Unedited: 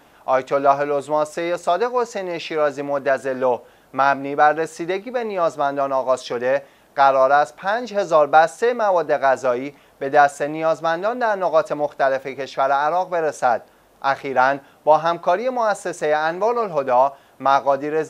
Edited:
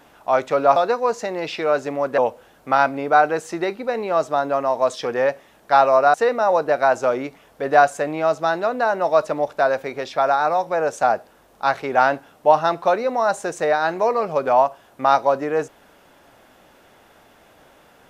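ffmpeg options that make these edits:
-filter_complex "[0:a]asplit=4[a][b][c][d];[a]atrim=end=0.762[e];[b]atrim=start=1.678:end=3.102[f];[c]atrim=start=3.448:end=7.412[g];[d]atrim=start=8.548[h];[e][f]acrossfade=d=0.004:c1=hsin:c2=hsin[i];[i][g]acrossfade=d=0.004:c1=hsin:c2=hsin[j];[j][h]acrossfade=d=0.004:c1=hsin:c2=hsin"

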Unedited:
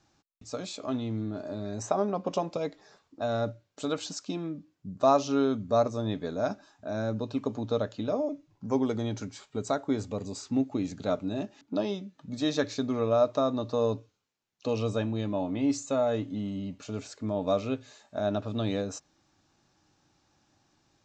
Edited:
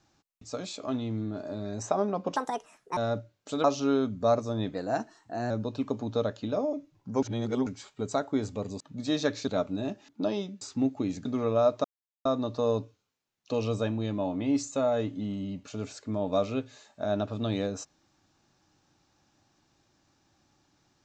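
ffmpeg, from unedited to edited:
-filter_complex "[0:a]asplit=13[a][b][c][d][e][f][g][h][i][j][k][l][m];[a]atrim=end=2.364[n];[b]atrim=start=2.36:end=3.28,asetpts=PTS-STARTPTS,asetrate=66591,aresample=44100[o];[c]atrim=start=3.276:end=3.952[p];[d]atrim=start=5.118:end=6.224[q];[e]atrim=start=6.22:end=7.06,asetpts=PTS-STARTPTS,asetrate=48510,aresample=44100,atrim=end_sample=33676,asetpts=PTS-STARTPTS[r];[f]atrim=start=7.056:end=8.782[s];[g]atrim=start=8.778:end=9.222,asetpts=PTS-STARTPTS,areverse[t];[h]atrim=start=9.218:end=10.362[u];[i]atrim=start=12.138:end=12.812[v];[j]atrim=start=10.998:end=12.142[w];[k]atrim=start=10.358:end=11.002[x];[l]atrim=start=12.808:end=13.4,asetpts=PTS-STARTPTS,afade=t=out:st=0.588:d=0.004:c=hsin,apad=pad_dur=0.41[y];[m]atrim=start=13.4,asetpts=PTS-STARTPTS,afade=t=in:d=0.004:c=hsin[z];[n][o]acrossfade=d=0.004:c1=hsin:c2=hsin[aa];[aa][p]acrossfade=d=0.004:c1=hsin:c2=hsin[ab];[ab][q]acrossfade=d=0.004:c1=hsin:c2=hsin[ac];[ac][r]acrossfade=d=0.004:c1=hsin:c2=hsin[ad];[ad][s]acrossfade=d=0.004:c1=hsin:c2=hsin[ae];[ae][t]acrossfade=d=0.004:c1=hsin:c2=hsin[af];[af][u]acrossfade=d=0.004:c1=hsin:c2=hsin[ag];[ag][v]acrossfade=d=0.004:c1=hsin:c2=hsin[ah];[ah][w]acrossfade=d=0.004:c1=hsin:c2=hsin[ai];[ai][x]acrossfade=d=0.004:c1=hsin:c2=hsin[aj];[y][z]concat=n=2:v=0:a=1[ak];[aj][ak]acrossfade=d=0.004:c1=hsin:c2=hsin"

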